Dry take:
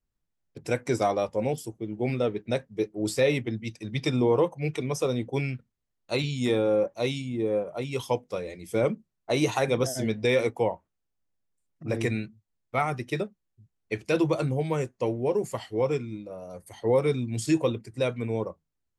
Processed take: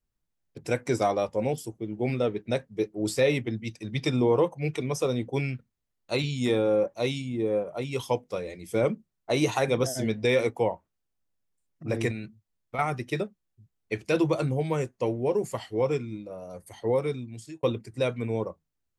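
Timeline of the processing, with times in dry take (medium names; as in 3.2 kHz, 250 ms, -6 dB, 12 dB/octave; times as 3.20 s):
12.11–12.79 s: compression, threshold -30 dBFS
16.70–17.63 s: fade out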